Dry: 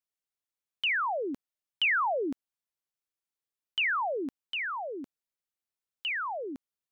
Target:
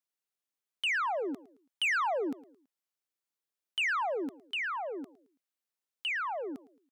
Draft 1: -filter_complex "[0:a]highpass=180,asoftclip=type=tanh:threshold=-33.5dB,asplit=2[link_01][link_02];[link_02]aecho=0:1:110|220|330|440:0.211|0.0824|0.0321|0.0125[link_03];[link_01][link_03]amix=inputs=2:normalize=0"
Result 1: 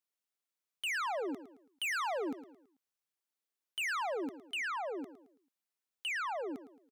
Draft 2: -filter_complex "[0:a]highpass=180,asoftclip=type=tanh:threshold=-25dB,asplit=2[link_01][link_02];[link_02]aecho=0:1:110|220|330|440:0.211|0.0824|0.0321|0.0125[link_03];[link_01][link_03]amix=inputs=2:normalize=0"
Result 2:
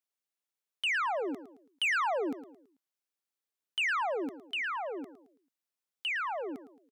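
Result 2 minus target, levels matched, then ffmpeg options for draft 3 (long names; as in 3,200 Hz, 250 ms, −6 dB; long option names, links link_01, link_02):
echo-to-direct +6.5 dB
-filter_complex "[0:a]highpass=180,asoftclip=type=tanh:threshold=-25dB,asplit=2[link_01][link_02];[link_02]aecho=0:1:110|220|330:0.1|0.039|0.0152[link_03];[link_01][link_03]amix=inputs=2:normalize=0"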